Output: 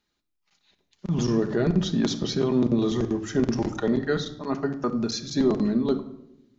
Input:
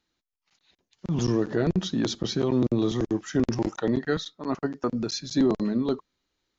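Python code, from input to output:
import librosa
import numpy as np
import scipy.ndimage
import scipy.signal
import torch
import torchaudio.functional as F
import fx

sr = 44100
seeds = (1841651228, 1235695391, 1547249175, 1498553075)

y = fx.room_shoebox(x, sr, seeds[0], volume_m3=2300.0, walls='furnished', distance_m=1.3)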